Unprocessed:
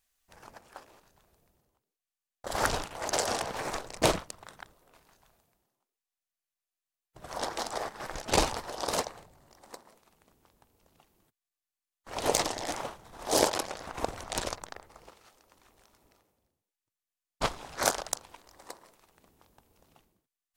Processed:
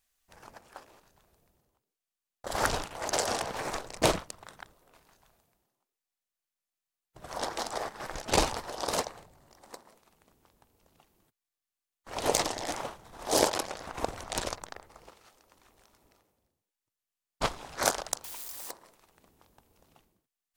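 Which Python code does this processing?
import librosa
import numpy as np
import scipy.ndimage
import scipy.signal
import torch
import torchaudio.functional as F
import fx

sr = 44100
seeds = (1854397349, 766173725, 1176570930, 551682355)

y = fx.crossing_spikes(x, sr, level_db=-33.5, at=(18.24, 18.71))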